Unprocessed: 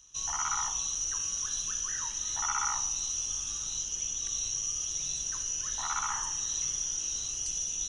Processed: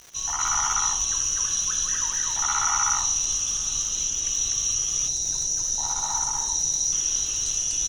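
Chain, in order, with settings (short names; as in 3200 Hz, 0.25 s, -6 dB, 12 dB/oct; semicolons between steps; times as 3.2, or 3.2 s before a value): loudspeakers at several distances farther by 29 m -9 dB, 85 m 0 dB; spectral gain 5.08–6.92, 1000–3600 Hz -13 dB; crackle 260/s -40 dBFS; gain +5 dB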